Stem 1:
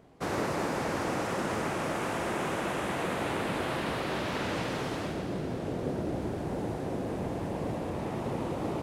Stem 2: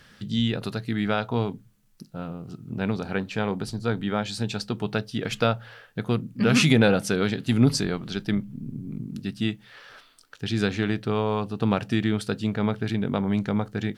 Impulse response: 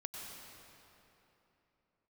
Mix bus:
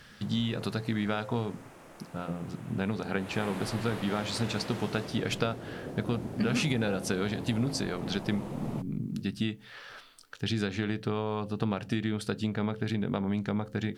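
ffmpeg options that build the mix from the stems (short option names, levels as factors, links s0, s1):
-filter_complex "[0:a]highshelf=f=9900:g=9.5,volume=0.422,afade=t=in:st=3.15:d=0.3:silence=0.237137[s0];[1:a]bandreject=f=87.87:t=h:w=4,bandreject=f=175.74:t=h:w=4,bandreject=f=263.61:t=h:w=4,bandreject=f=351.48:t=h:w=4,bandreject=f=439.35:t=h:w=4,bandreject=f=527.22:t=h:w=4,acompressor=threshold=0.0447:ratio=5,volume=1.06[s1];[s0][s1]amix=inputs=2:normalize=0"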